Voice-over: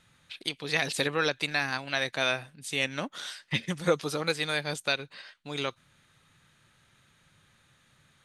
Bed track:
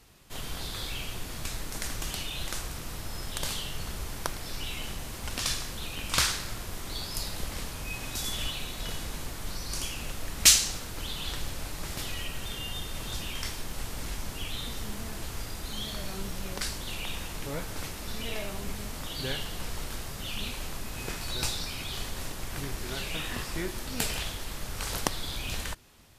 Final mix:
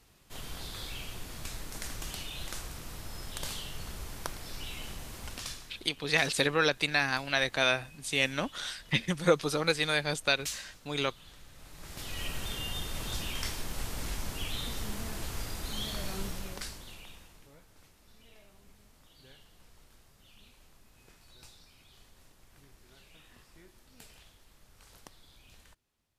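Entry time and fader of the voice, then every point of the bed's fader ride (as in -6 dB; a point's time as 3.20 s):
5.40 s, +1.0 dB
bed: 5.22 s -5 dB
5.93 s -19.5 dB
11.48 s -19.5 dB
12.26 s -0.5 dB
16.23 s -0.5 dB
17.60 s -23.5 dB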